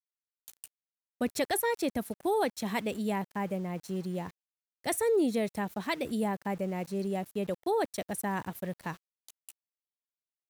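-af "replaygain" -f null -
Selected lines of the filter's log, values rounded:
track_gain = +12.2 dB
track_peak = 0.077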